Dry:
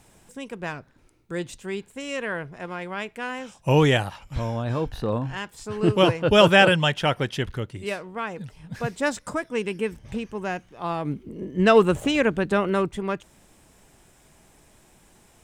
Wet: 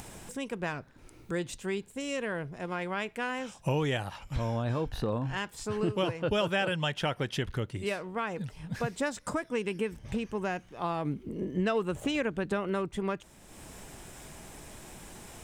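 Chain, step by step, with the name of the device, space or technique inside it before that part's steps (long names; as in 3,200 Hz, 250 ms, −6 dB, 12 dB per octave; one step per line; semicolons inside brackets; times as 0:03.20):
0:01.78–0:02.72: parametric band 1,500 Hz −5.5 dB 2.4 octaves
upward and downward compression (upward compression, threshold −37 dBFS; downward compressor 4 to 1, threshold −28 dBFS, peak gain reduction 15 dB)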